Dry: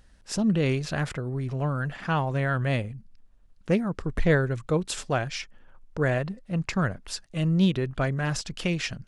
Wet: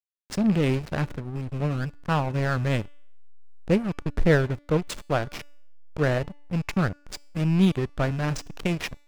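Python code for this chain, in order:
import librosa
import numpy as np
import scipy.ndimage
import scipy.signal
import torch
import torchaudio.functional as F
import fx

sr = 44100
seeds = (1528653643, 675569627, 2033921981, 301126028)

y = fx.rattle_buzz(x, sr, strikes_db=-29.0, level_db=-30.0)
y = fx.backlash(y, sr, play_db=-24.5)
y = fx.comb_fb(y, sr, f0_hz=290.0, decay_s=0.72, harmonics='all', damping=0.0, mix_pct=40)
y = y * librosa.db_to_amplitude(7.0)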